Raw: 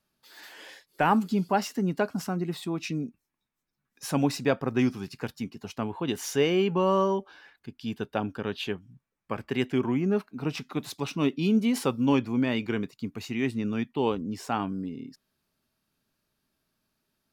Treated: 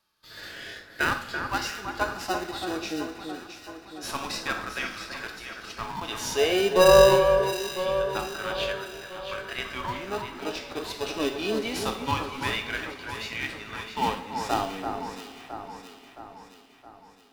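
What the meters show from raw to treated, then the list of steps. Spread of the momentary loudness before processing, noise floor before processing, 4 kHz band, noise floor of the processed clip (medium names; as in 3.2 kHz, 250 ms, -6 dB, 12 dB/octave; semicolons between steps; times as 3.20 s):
14 LU, -83 dBFS, +7.0 dB, -52 dBFS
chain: LFO high-pass sine 0.25 Hz 520–1600 Hz; in parallel at -6 dB: sample-and-hold 40×; on the sum: two-slope reverb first 0.54 s, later 4.9 s, from -18 dB, DRR 7.5 dB; harmonic-percussive split percussive -9 dB; peaking EQ 4.2 kHz +7 dB 1.1 oct; on a send: echo whose repeats swap between lows and highs 334 ms, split 1.8 kHz, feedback 72%, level -6 dB; on the sum: trim +2.5 dB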